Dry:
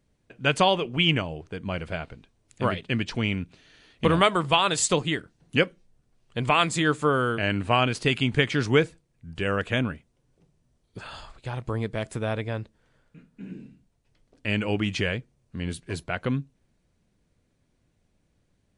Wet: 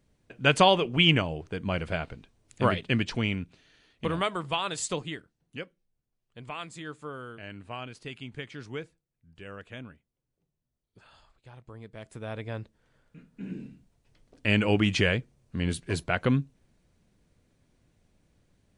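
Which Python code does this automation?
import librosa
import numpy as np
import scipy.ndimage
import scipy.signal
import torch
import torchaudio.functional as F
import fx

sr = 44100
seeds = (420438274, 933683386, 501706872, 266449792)

y = fx.gain(x, sr, db=fx.line((2.88, 1.0), (4.04, -8.5), (5.02, -8.5), (5.58, -17.0), (11.79, -17.0), (12.52, -5.0), (13.62, 2.5)))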